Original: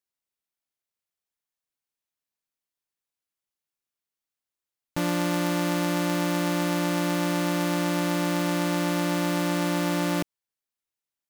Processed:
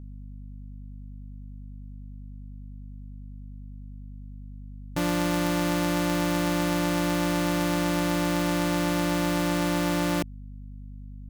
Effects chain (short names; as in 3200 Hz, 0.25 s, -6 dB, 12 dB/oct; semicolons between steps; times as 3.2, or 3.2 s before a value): hum 50 Hz, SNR 12 dB